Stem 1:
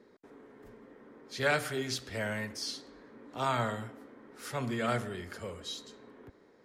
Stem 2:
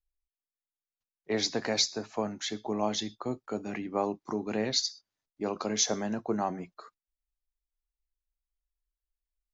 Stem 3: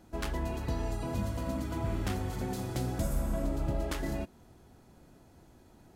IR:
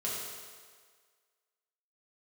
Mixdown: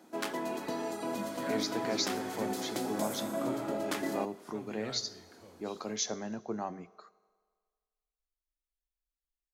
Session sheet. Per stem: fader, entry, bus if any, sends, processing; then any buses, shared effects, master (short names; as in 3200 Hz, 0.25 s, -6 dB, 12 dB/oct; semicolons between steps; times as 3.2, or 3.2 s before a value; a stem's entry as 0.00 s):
-16.0 dB, 0.00 s, no send, dry
-7.0 dB, 0.20 s, send -21.5 dB, dry
+2.0 dB, 0.00 s, send -20 dB, HPF 230 Hz 24 dB/oct; notch 2800 Hz, Q 28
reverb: on, RT60 1.7 s, pre-delay 4 ms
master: dry